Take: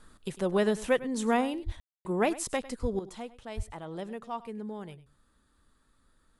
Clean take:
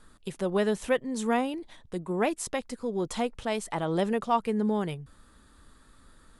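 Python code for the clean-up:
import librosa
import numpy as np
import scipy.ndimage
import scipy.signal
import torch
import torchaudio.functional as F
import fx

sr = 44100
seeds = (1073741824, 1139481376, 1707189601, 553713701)

y = fx.highpass(x, sr, hz=140.0, slope=24, at=(1.65, 1.77), fade=0.02)
y = fx.highpass(y, sr, hz=140.0, slope=24, at=(2.81, 2.93), fade=0.02)
y = fx.highpass(y, sr, hz=140.0, slope=24, at=(3.56, 3.68), fade=0.02)
y = fx.fix_ambience(y, sr, seeds[0], print_start_s=5.13, print_end_s=5.63, start_s=1.8, end_s=2.05)
y = fx.fix_echo_inverse(y, sr, delay_ms=101, level_db=-17.5)
y = fx.fix_level(y, sr, at_s=2.99, step_db=11.5)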